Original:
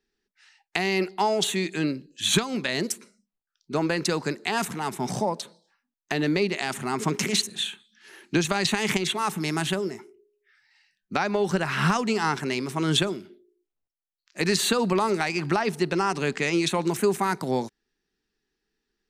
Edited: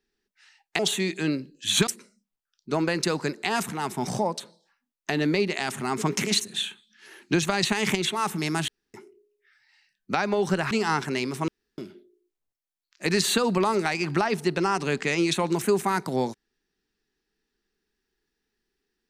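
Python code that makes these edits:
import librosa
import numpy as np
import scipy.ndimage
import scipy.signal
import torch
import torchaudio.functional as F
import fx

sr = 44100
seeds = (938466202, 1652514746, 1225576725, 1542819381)

y = fx.edit(x, sr, fx.cut(start_s=0.79, length_s=0.56),
    fx.cut(start_s=2.43, length_s=0.46),
    fx.room_tone_fill(start_s=9.7, length_s=0.26),
    fx.cut(start_s=11.73, length_s=0.33),
    fx.room_tone_fill(start_s=12.83, length_s=0.3), tone=tone)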